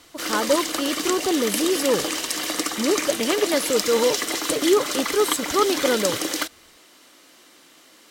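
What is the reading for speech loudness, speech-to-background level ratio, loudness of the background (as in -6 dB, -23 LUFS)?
-23.5 LUFS, 1.5 dB, -25.0 LUFS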